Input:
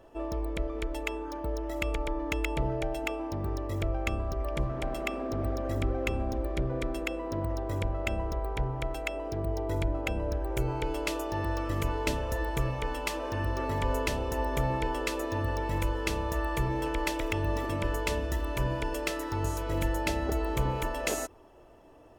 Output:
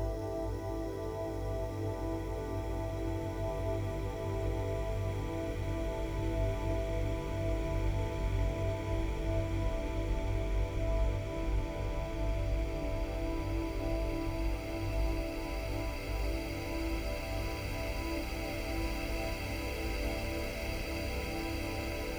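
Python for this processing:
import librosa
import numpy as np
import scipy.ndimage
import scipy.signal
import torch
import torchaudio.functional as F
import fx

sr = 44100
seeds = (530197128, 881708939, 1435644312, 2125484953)

y = fx.tracing_dist(x, sr, depth_ms=0.21)
y = fx.paulstretch(y, sr, seeds[0], factor=45.0, window_s=0.5, from_s=9.62)
y = F.gain(torch.from_numpy(y), -5.0).numpy()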